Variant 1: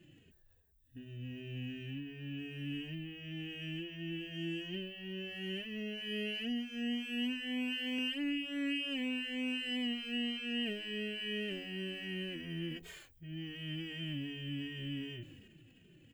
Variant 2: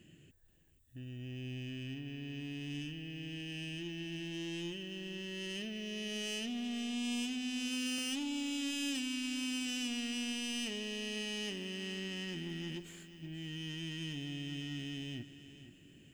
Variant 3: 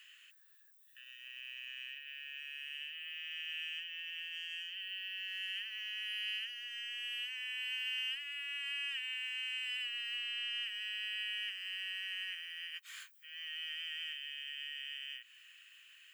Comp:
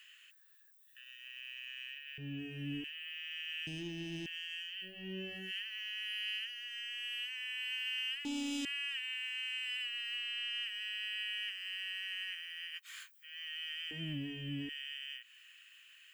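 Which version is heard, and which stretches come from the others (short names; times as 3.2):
3
2.18–2.84 from 1
3.67–4.26 from 2
4.89–5.44 from 1, crossfade 0.16 s
8.25–8.65 from 2
13.91–14.69 from 1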